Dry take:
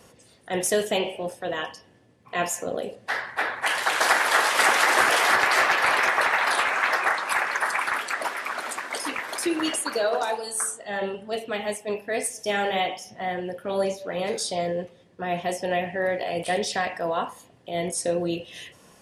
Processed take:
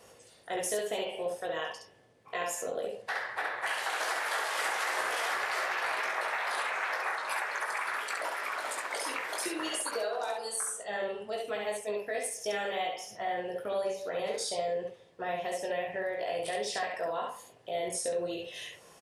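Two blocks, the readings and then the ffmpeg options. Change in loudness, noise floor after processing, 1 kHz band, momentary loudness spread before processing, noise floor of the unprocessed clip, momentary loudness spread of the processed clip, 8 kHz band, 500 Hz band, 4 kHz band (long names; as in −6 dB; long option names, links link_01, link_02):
−9.0 dB, −58 dBFS, −9.0 dB, 13 LU, −56 dBFS, 6 LU, −7.5 dB, −6.5 dB, −9.0 dB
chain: -filter_complex "[0:a]lowshelf=frequency=340:width_type=q:width=1.5:gain=-6,acompressor=threshold=-29dB:ratio=4,asplit=2[link_01][link_02];[link_02]aecho=0:1:19|68:0.562|0.708[link_03];[link_01][link_03]amix=inputs=2:normalize=0,volume=-4.5dB"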